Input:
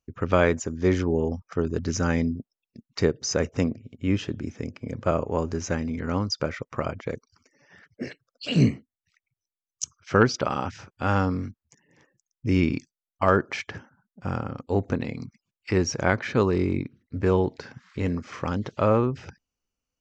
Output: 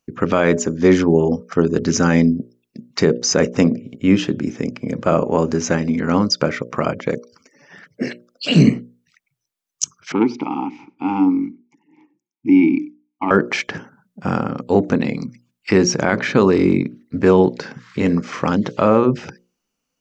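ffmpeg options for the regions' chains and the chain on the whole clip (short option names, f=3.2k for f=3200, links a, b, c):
-filter_complex "[0:a]asettb=1/sr,asplit=3[a][b][c];[a]atrim=end=10.124[d];[b]atrim=start=10.12:end=13.31,asetpts=PTS-STARTPTS,afade=t=in:d=0.004:c=qsin,afade=t=out:st=3.186:d=0.004:c=qsin,acontrast=73,asplit=3[e][f][g];[e]bandpass=f=300:t=q:w=8,volume=0dB[h];[f]bandpass=f=870:t=q:w=8,volume=-6dB[i];[g]bandpass=f=2.24k:t=q:w=8,volume=-9dB[j];[h][i][j]amix=inputs=3:normalize=0,aecho=1:1:95:0.0668,atrim=end_sample=140679[k];[c]atrim=start=13.306[l];[d][k]acrossfade=d=0.004:c1=hsin:c2=qsin[m];[m][l]acrossfade=d=0.004:c1=qsin:c2=hsin,lowshelf=f=120:t=q:w=1.5:g=-11,bandreject=f=60:t=h:w=6,bandreject=f=120:t=h:w=6,bandreject=f=180:t=h:w=6,bandreject=f=240:t=h:w=6,bandreject=f=300:t=h:w=6,bandreject=f=360:t=h:w=6,bandreject=f=420:t=h:w=6,bandreject=f=480:t=h:w=6,bandreject=f=540:t=h:w=6,bandreject=f=600:t=h:w=6,alimiter=level_in=11dB:limit=-1dB:release=50:level=0:latency=1,volume=-1dB"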